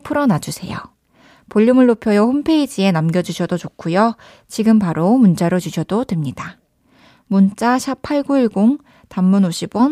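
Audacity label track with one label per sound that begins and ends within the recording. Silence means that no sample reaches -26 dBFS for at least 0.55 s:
1.510000	6.500000	sound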